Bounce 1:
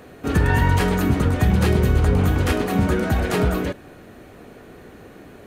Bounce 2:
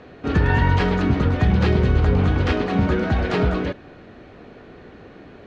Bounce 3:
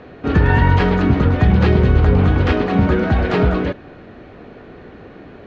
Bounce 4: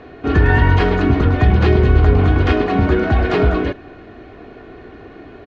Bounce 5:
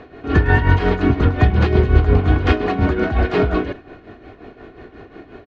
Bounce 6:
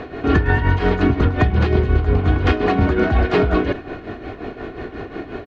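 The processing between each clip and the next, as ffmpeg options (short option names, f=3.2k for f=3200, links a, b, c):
-af "lowpass=f=4.9k:w=0.5412,lowpass=f=4.9k:w=1.3066"
-af "highshelf=f=5.5k:g=-11,volume=4.5dB"
-af "aecho=1:1:2.8:0.45"
-af "tremolo=f=5.6:d=0.67,volume=1dB"
-af "acompressor=threshold=-22dB:ratio=6,volume=9dB"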